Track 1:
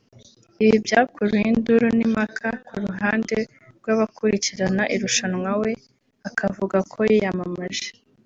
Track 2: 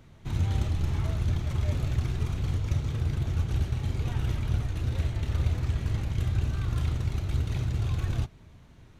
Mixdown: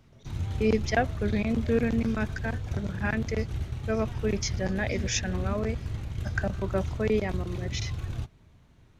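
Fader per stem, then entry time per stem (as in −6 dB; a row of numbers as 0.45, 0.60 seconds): −8.5, −5.0 decibels; 0.00, 0.00 seconds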